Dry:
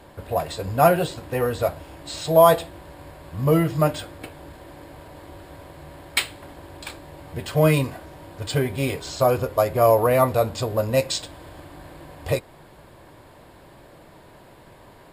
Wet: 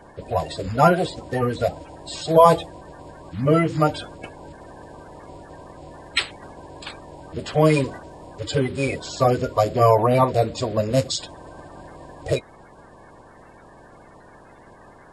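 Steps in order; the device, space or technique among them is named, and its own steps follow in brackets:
clip after many re-uploads (low-pass filter 8,100 Hz 24 dB per octave; spectral magnitudes quantised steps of 30 dB)
level +1.5 dB

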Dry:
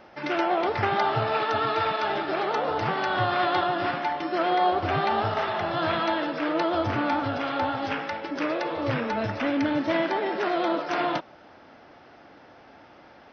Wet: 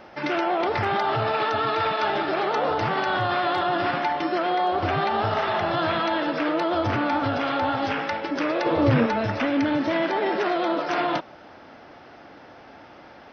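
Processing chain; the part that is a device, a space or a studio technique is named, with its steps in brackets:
clipper into limiter (hard clipping −13 dBFS, distortion −41 dB; brickwall limiter −19.5 dBFS, peak gain reduction 6.5 dB)
0:08.66–0:09.06: low-shelf EQ 440 Hz +9 dB
level +4.5 dB

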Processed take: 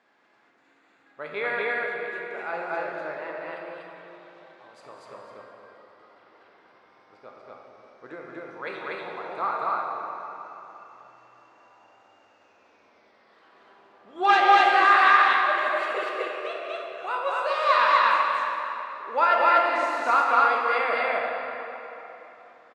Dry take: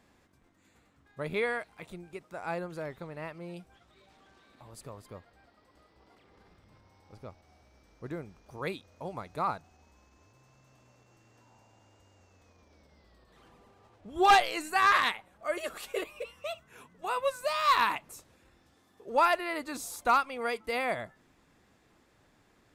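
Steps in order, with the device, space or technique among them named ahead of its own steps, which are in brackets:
station announcement (band-pass filter 410–3,800 Hz; parametric band 1,500 Hz +5 dB 0.58 octaves; loudspeakers that aren't time-aligned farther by 66 metres −11 dB, 83 metres 0 dB; convolution reverb RT60 3.5 s, pre-delay 9 ms, DRR −0.5 dB)

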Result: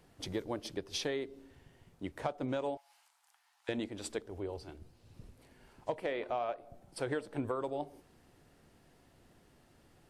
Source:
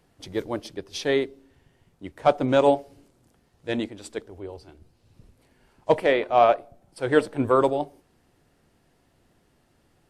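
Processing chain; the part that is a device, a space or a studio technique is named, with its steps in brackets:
0:02.77–0:03.69: elliptic high-pass filter 820 Hz, stop band 50 dB
serial compression, peaks first (downward compressor 6 to 1, threshold −26 dBFS, peak gain reduction 13 dB; downward compressor 2 to 1, threshold −37 dBFS, peak gain reduction 8 dB)

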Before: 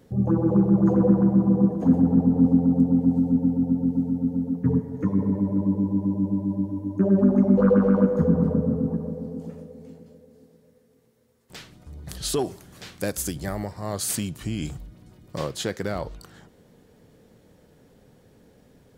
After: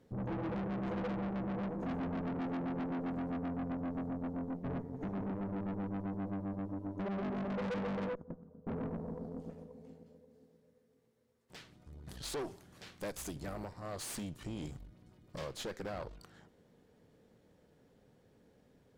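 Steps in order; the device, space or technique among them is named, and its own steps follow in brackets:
0:08.15–0:08.67: noise gate −14 dBFS, range −24 dB
tube preamp driven hard (tube saturation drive 30 dB, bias 0.8; low-shelf EQ 190 Hz −3 dB; high-shelf EQ 6,900 Hz −8 dB)
level −4.5 dB

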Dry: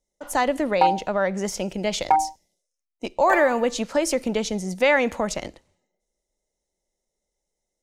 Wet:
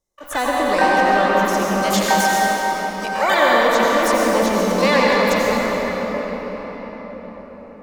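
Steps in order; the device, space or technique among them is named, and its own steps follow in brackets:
0:01.81–0:03.41: spectral tilt +2.5 dB per octave
shimmer-style reverb (pitch-shifted copies added +12 semitones −6 dB; convolution reverb RT60 5.9 s, pre-delay 81 ms, DRR −5 dB)
level −1 dB

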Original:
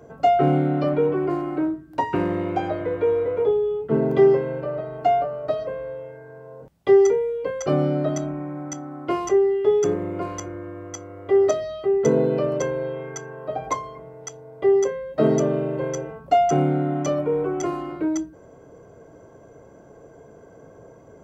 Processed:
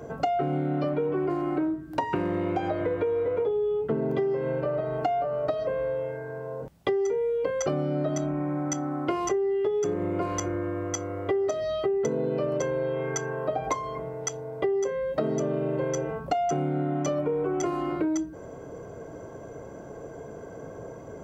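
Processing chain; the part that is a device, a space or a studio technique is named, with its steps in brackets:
serial compression, leveller first (downward compressor 3 to 1, threshold −20 dBFS, peak gain reduction 7.5 dB; downward compressor 5 to 1, threshold −31 dBFS, peak gain reduction 12.5 dB)
level +6 dB

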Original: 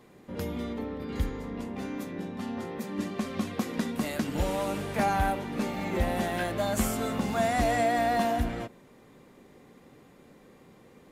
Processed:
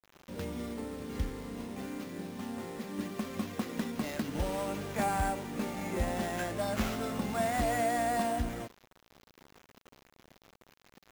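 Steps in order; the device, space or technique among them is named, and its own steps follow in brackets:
early 8-bit sampler (sample-rate reduction 9,000 Hz, jitter 0%; bit reduction 8 bits)
level −4.5 dB

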